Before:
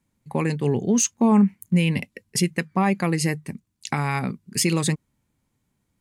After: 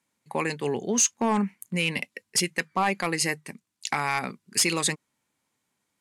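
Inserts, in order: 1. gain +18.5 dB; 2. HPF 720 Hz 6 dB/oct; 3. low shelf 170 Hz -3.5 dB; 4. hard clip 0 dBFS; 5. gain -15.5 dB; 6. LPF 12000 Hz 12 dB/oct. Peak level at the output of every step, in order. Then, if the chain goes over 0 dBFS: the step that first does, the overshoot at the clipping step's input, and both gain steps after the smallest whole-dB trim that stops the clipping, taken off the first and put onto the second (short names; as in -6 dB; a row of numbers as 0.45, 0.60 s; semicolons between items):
+10.0, +9.5, +9.5, 0.0, -15.5, -13.5 dBFS; step 1, 9.5 dB; step 1 +8.5 dB, step 5 -5.5 dB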